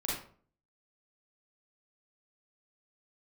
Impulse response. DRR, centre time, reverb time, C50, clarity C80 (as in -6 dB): -6.0 dB, 52 ms, 0.45 s, 0.5 dB, 6.5 dB